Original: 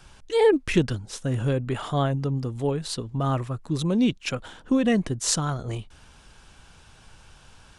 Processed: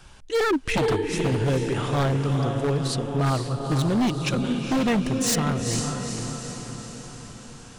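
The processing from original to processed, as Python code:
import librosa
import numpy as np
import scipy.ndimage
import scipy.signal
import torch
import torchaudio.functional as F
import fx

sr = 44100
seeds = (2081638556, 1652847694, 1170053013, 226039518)

y = fx.echo_diffused(x, sr, ms=459, feedback_pct=58, wet_db=-5.5)
y = 10.0 ** (-18.0 / 20.0) * (np.abs((y / 10.0 ** (-18.0 / 20.0) + 3.0) % 4.0 - 2.0) - 1.0)
y = y * librosa.db_to_amplitude(1.5)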